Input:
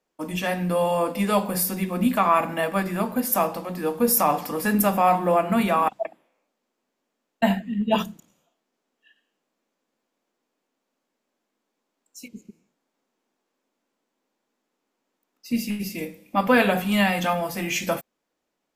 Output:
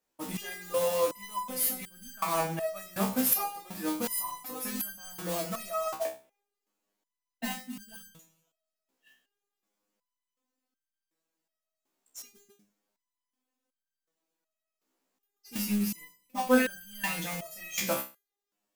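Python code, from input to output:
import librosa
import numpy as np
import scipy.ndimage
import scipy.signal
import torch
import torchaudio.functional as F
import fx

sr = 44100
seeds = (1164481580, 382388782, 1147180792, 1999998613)

p1 = fx.high_shelf(x, sr, hz=6900.0, db=10.5)
p2 = fx.mod_noise(p1, sr, seeds[0], snr_db=10)
p3 = 10.0 ** (-10.5 / 20.0) * (np.abs((p2 / 10.0 ** (-10.5 / 20.0) + 3.0) % 4.0 - 2.0) - 1.0)
p4 = p2 + (p3 * librosa.db_to_amplitude(-9.0))
y = fx.resonator_held(p4, sr, hz=2.7, low_hz=65.0, high_hz=1600.0)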